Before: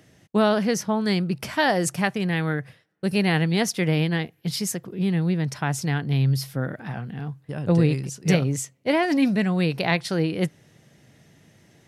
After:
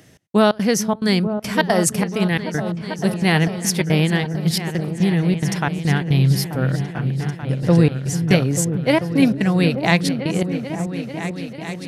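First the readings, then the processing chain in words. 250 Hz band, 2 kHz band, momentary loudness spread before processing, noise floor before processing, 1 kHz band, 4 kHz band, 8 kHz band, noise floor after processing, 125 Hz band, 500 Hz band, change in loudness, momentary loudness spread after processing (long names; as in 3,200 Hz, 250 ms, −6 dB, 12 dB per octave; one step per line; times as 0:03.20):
+5.0 dB, +3.5 dB, 9 LU, −59 dBFS, +3.5 dB, +5.0 dB, +6.5 dB, −34 dBFS, +5.5 dB, +4.5 dB, +4.5 dB, 8 LU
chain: high-shelf EQ 6,600 Hz +5 dB
gate pattern "xx..xx.xxxx.x" 177 BPM −24 dB
echo whose low-pass opens from repeat to repeat 442 ms, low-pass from 200 Hz, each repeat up 2 octaves, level −6 dB
level +5 dB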